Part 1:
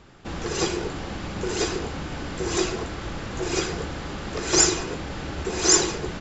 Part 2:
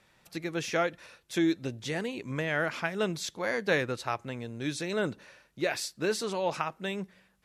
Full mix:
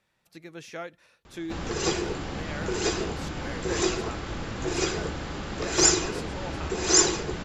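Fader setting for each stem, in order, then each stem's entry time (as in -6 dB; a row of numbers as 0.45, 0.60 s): -1.5, -9.5 dB; 1.25, 0.00 s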